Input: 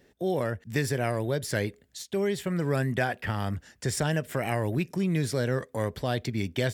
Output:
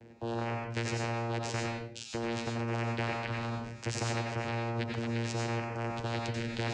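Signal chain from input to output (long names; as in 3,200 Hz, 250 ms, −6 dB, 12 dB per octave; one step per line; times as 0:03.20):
channel vocoder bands 8, saw 116 Hz
convolution reverb RT60 0.45 s, pre-delay 83 ms, DRR 1 dB
every bin compressed towards the loudest bin 2 to 1
level −2 dB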